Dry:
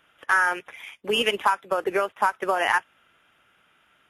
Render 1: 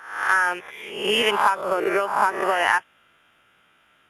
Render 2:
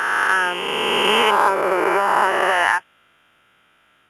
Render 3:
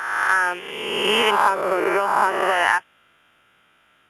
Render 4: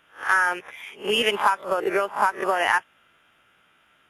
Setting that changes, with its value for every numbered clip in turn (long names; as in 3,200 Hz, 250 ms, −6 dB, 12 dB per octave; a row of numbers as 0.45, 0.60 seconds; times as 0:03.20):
peak hold with a rise ahead of every peak, rising 60 dB in: 0.68, 3.2, 1.52, 0.3 seconds